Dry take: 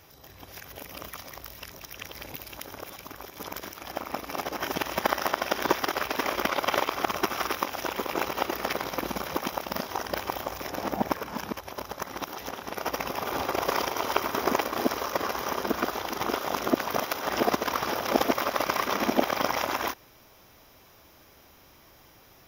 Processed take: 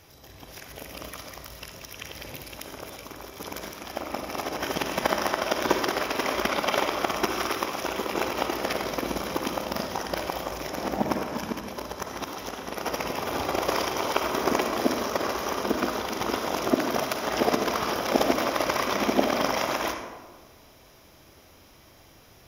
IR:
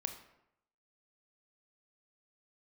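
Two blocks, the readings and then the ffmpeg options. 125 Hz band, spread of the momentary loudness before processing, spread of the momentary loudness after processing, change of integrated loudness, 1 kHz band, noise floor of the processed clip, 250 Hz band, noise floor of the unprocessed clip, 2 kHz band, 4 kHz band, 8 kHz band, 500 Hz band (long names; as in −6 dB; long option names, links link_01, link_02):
+3.0 dB, 14 LU, 14 LU, +1.5 dB, +0.5 dB, −54 dBFS, +3.0 dB, −56 dBFS, +1.0 dB, +2.0 dB, +2.5 dB, +2.5 dB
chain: -filter_complex "[0:a]equalizer=frequency=1200:width_type=o:width=1.5:gain=-3[link_01];[1:a]atrim=start_sample=2205,asetrate=23814,aresample=44100[link_02];[link_01][link_02]afir=irnorm=-1:irlink=0"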